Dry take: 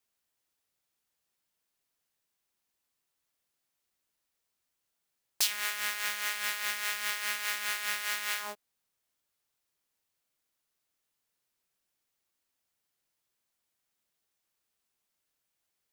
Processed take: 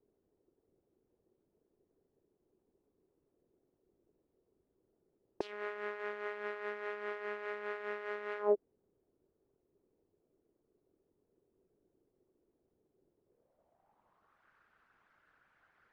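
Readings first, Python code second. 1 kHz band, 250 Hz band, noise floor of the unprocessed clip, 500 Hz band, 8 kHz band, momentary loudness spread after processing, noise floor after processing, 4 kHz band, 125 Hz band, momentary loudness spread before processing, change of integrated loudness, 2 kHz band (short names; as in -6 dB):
-3.0 dB, +9.5 dB, -83 dBFS, +15.5 dB, under -35 dB, 7 LU, -81 dBFS, -24.0 dB, n/a, 4 LU, -8.0 dB, -10.0 dB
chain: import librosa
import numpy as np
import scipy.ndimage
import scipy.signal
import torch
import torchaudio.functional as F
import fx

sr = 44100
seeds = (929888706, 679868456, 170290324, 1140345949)

y = fx.envelope_sharpen(x, sr, power=1.5)
y = fx.filter_sweep_lowpass(y, sr, from_hz=390.0, to_hz=1500.0, start_s=13.18, end_s=14.48, q=3.7)
y = F.gain(torch.from_numpy(y), 14.5).numpy()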